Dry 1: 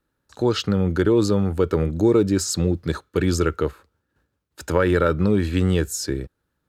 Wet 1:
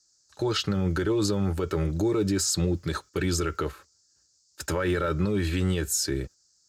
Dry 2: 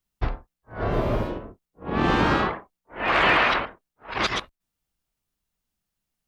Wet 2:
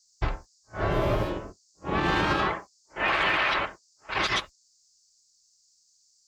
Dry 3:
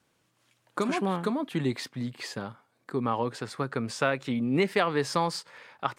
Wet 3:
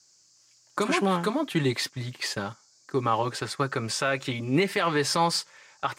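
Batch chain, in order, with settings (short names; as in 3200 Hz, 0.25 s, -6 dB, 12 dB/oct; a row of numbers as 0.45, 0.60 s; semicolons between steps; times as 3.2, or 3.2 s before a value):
gate -40 dBFS, range -10 dB; tilt shelf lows -3 dB, about 1100 Hz; limiter -17.5 dBFS; notch comb 240 Hz; band noise 4500–7500 Hz -68 dBFS; match loudness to -27 LUFS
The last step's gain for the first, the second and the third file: +1.5, +2.5, +6.5 dB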